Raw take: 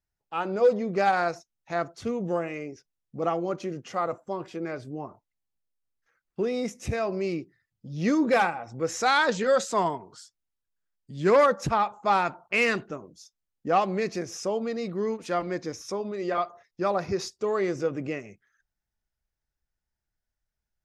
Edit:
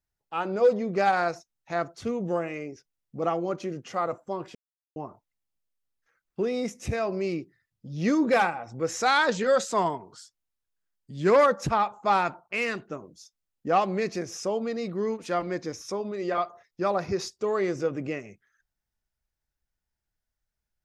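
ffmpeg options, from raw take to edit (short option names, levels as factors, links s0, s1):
-filter_complex "[0:a]asplit=5[s0][s1][s2][s3][s4];[s0]atrim=end=4.55,asetpts=PTS-STARTPTS,afade=t=out:st=4.546:d=0.004:c=hsin[s5];[s1]atrim=start=4.55:end=4.96,asetpts=PTS-STARTPTS,volume=0[s6];[s2]atrim=start=4.96:end=12.402,asetpts=PTS-STARTPTS,afade=t=in:d=0.004:c=hsin[s7];[s3]atrim=start=12.398:end=12.912,asetpts=PTS-STARTPTS,volume=0.562[s8];[s4]atrim=start=12.908[s9];[s5][s6][s7]concat=n=3:v=0:a=1[s10];[s10][s8]acrossfade=d=0.004:c1=hsin:c2=hsin[s11];[s11][s9]acrossfade=d=0.004:c1=hsin:c2=hsin"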